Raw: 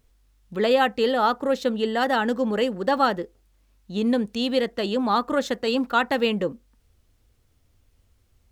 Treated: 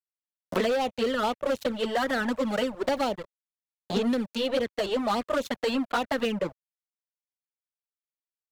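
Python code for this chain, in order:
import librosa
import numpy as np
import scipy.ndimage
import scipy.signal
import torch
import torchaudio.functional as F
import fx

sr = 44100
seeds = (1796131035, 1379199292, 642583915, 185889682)

y = np.sign(x) * np.maximum(np.abs(x) - 10.0 ** (-33.5 / 20.0), 0.0)
y = fx.peak_eq(y, sr, hz=600.0, db=5.0, octaves=0.39)
y = fx.env_flanger(y, sr, rest_ms=11.0, full_db=-16.5)
y = np.clip(y, -10.0 ** (-20.5 / 20.0), 10.0 ** (-20.5 / 20.0))
y = fx.band_squash(y, sr, depth_pct=100)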